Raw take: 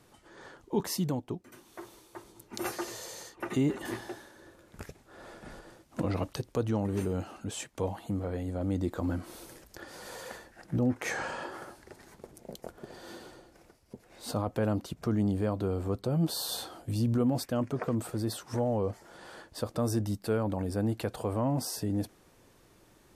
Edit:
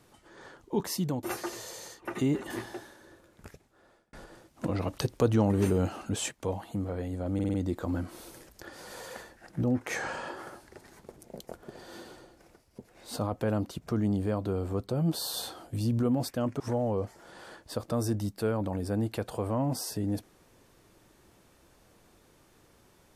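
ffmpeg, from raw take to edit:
ffmpeg -i in.wav -filter_complex "[0:a]asplit=10[link_01][link_02][link_03][link_04][link_05][link_06][link_07][link_08][link_09][link_10];[link_01]atrim=end=1.232[link_11];[link_02]atrim=start=2.578:end=5.48,asetpts=PTS-STARTPTS,afade=type=out:start_time=1.782:duration=1.12[link_12];[link_03]atrim=start=5.48:end=6.282,asetpts=PTS-STARTPTS,afade=type=in:duration=0.004:curve=hsin[link_13];[link_04]atrim=start=6.278:end=7.662,asetpts=PTS-STARTPTS,volume=5.5dB[link_14];[link_05]atrim=start=7.658:end=8.742[link_15];[link_06]atrim=start=8.688:end=8.742[link_16];[link_07]atrim=start=8.688:end=8.742[link_17];[link_08]atrim=start=8.688:end=8.742[link_18];[link_09]atrim=start=8.688:end=17.752[link_19];[link_10]atrim=start=18.458[link_20];[link_12][link_13]concat=n=2:v=0:a=1[link_21];[link_11][link_21]acrossfade=duration=0.004:curve1=hsin:curve2=hsin[link_22];[link_22][link_14]acrossfade=duration=0.004:curve1=hsin:curve2=hsin[link_23];[link_23][link_15]acrossfade=duration=0.004:curve1=hsin:curve2=hsin[link_24];[link_24][link_16]acrossfade=duration=0.004:curve1=hsin:curve2=hsin[link_25];[link_25][link_17]acrossfade=duration=0.004:curve1=hsin:curve2=hsin[link_26];[link_26][link_18]acrossfade=duration=0.004:curve1=hsin:curve2=hsin[link_27];[link_27][link_19]acrossfade=duration=0.004:curve1=hsin:curve2=hsin[link_28];[link_28][link_20]acrossfade=duration=0.004:curve1=hsin:curve2=hsin" out.wav

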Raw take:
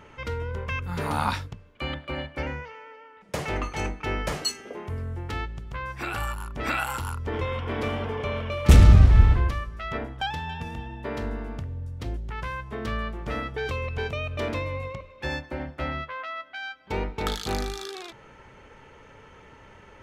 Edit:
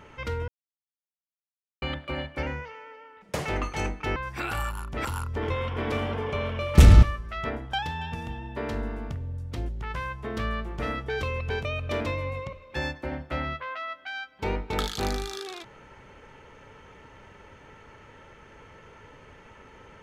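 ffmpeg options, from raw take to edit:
ffmpeg -i in.wav -filter_complex "[0:a]asplit=6[link_01][link_02][link_03][link_04][link_05][link_06];[link_01]atrim=end=0.48,asetpts=PTS-STARTPTS,afade=type=out:start_time=0.476:duration=0.004:curve=hsin[link_07];[link_02]atrim=start=0.48:end=1.82,asetpts=PTS-STARTPTS,volume=0[link_08];[link_03]atrim=start=1.82:end=4.162,asetpts=PTS-STARTPTS,afade=type=in:duration=0.004:curve=hsin[link_09];[link_04]atrim=start=5.788:end=6.682[link_10];[link_05]atrim=start=6.958:end=8.942[link_11];[link_06]atrim=start=9.508[link_12];[link_07][link_08][link_09]concat=n=3:v=0:a=1[link_13];[link_13][link_10]acrossfade=duration=0.004:curve1=hsin:curve2=hsin[link_14];[link_14][link_11]acrossfade=duration=0.004:curve1=hsin:curve2=hsin[link_15];[link_15][link_12]acrossfade=duration=0.004:curve1=hsin:curve2=hsin" out.wav

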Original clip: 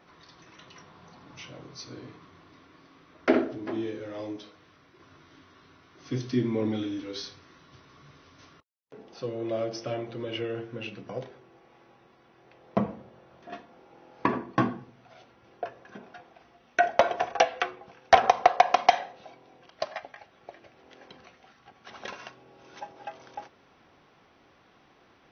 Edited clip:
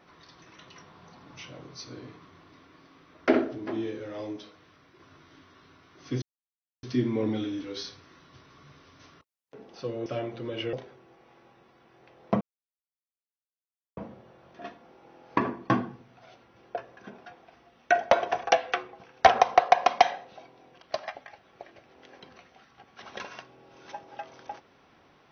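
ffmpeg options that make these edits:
ffmpeg -i in.wav -filter_complex "[0:a]asplit=5[link_01][link_02][link_03][link_04][link_05];[link_01]atrim=end=6.22,asetpts=PTS-STARTPTS,afade=type=out:start_time=6.216:duration=0.004:curve=hsin,apad=pad_dur=0.61[link_06];[link_02]atrim=start=6.22:end=9.452,asetpts=PTS-STARTPTS,afade=type=in:duration=0.004:curve=hsin[link_07];[link_03]atrim=start=9.808:end=10.482[link_08];[link_04]atrim=start=11.168:end=12.85,asetpts=PTS-STARTPTS,afade=type=out:start_time=1.678:duration=0.004:curve=hsin,apad=pad_dur=1.56[link_09];[link_05]atrim=start=12.85,asetpts=PTS-STARTPTS,afade=type=in:duration=0.004:curve=hsin[link_10];[link_06][link_07]concat=n=2:v=0:a=1[link_11];[link_11][link_08]acrossfade=duration=0.004:curve1=hsin:curve2=hsin[link_12];[link_09][link_10]concat=n=2:v=0:a=1[link_13];[link_12][link_13]acrossfade=duration=0.004:curve1=hsin:curve2=hsin" out.wav

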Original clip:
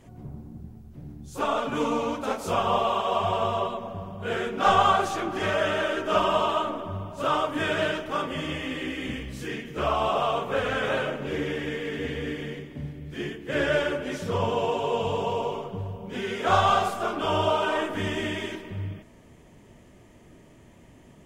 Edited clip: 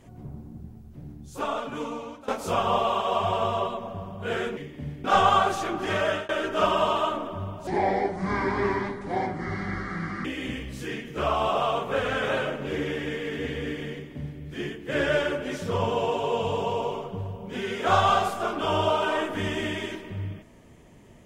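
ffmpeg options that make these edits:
ffmpeg -i in.wav -filter_complex "[0:a]asplit=7[link_01][link_02][link_03][link_04][link_05][link_06][link_07];[link_01]atrim=end=2.28,asetpts=PTS-STARTPTS,afade=type=out:start_time=1.04:duration=1.24:silence=0.16788[link_08];[link_02]atrim=start=2.28:end=4.572,asetpts=PTS-STARTPTS,afade=type=in:duration=0.004:curve=hsin:silence=0.16788[link_09];[link_03]atrim=start=12.538:end=13.012[link_10];[link_04]atrim=start=4.568:end=5.82,asetpts=PTS-STARTPTS,afade=type=out:start_time=1.002:duration=0.25:curve=qsin[link_11];[link_05]atrim=start=5.82:end=7.204,asetpts=PTS-STARTPTS,afade=type=in:duration=0.004:curve=hsin[link_12];[link_06]atrim=start=7.2:end=8.85,asetpts=PTS-STARTPTS,asetrate=28224,aresample=44100,atrim=end_sample=113695,asetpts=PTS-STARTPTS[link_13];[link_07]atrim=start=8.846[link_14];[link_08][link_09]concat=n=2:v=0:a=1[link_15];[link_15][link_10]acrossfade=duration=0.004:curve1=hsin:curve2=hsin[link_16];[link_11][link_12]concat=n=2:v=0:a=1[link_17];[link_16][link_17]acrossfade=duration=0.004:curve1=hsin:curve2=hsin[link_18];[link_18][link_13]acrossfade=duration=0.004:curve1=hsin:curve2=hsin[link_19];[link_19][link_14]acrossfade=duration=0.004:curve1=hsin:curve2=hsin" out.wav

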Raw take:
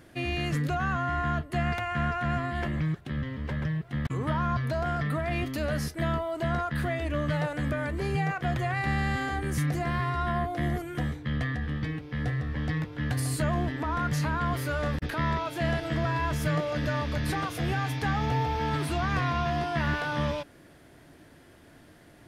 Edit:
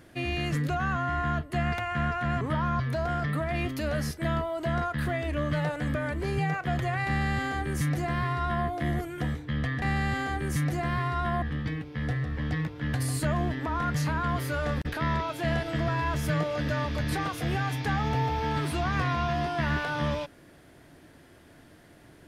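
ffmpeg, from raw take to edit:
ffmpeg -i in.wav -filter_complex "[0:a]asplit=4[link_01][link_02][link_03][link_04];[link_01]atrim=end=2.412[link_05];[link_02]atrim=start=4.178:end=11.592[link_06];[link_03]atrim=start=8.838:end=10.442[link_07];[link_04]atrim=start=11.588[link_08];[link_05][link_06]acrossfade=duration=0.004:curve1=hsin:curve2=hsin[link_09];[link_09][link_07]acrossfade=duration=0.004:curve1=hsin:curve2=hsin[link_10];[link_10][link_08]acrossfade=duration=0.004:curve1=hsin:curve2=hsin" out.wav

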